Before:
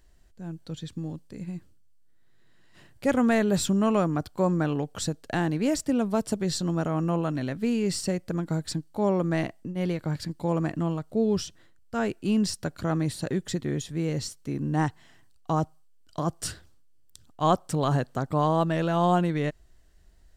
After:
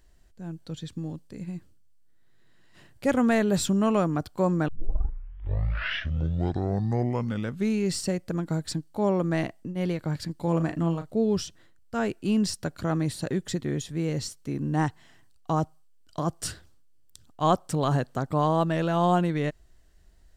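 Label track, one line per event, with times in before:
4.680000	4.680000	tape start 3.28 s
10.360000	11.110000	double-tracking delay 36 ms −9 dB

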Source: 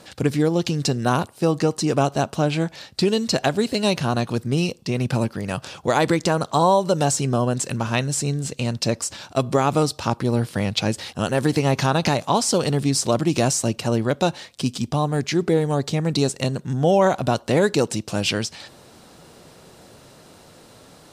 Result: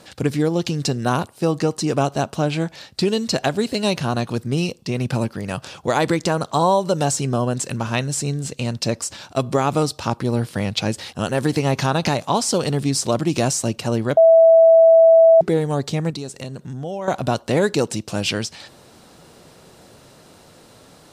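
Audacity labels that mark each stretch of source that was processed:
14.170000	15.410000	beep over 656 Hz −7 dBFS
16.100000	17.080000	downward compressor 2.5 to 1, threshold −31 dBFS

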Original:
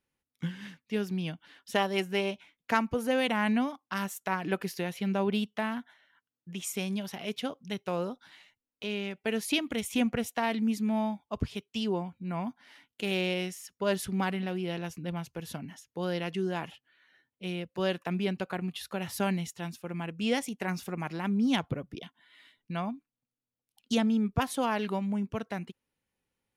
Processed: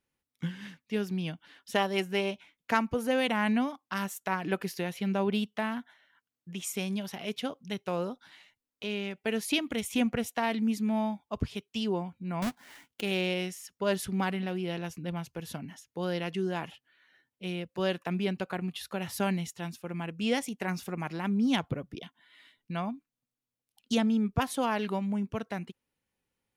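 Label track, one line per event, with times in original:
12.420000	13.010000	each half-wave held at its own peak

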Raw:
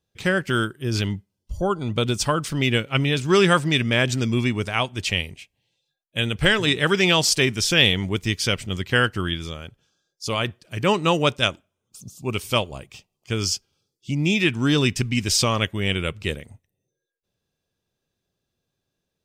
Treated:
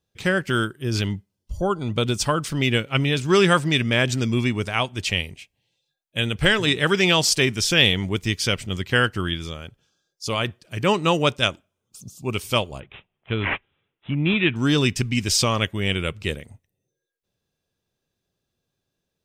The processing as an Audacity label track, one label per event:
12.800000	14.560000	bad sample-rate conversion rate divided by 6×, down none, up filtered

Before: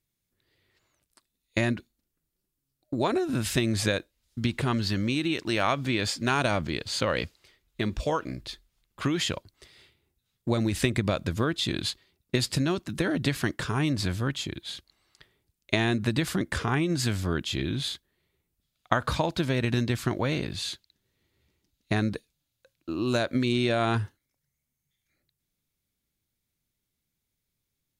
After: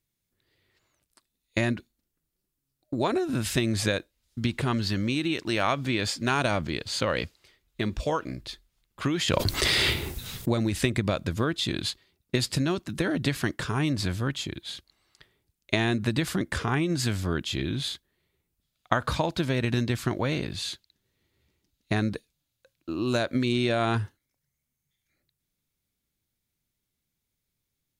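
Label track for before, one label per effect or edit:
9.280000	10.520000	envelope flattener amount 100%

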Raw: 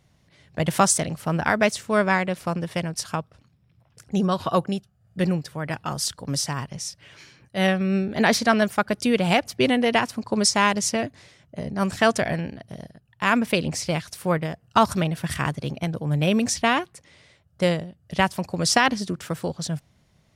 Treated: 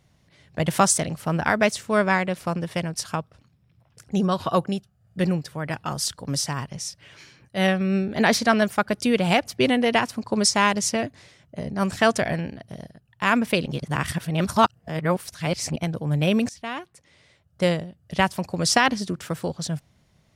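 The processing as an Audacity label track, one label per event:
13.660000	15.760000	reverse
16.490000	17.650000	fade in, from −19 dB

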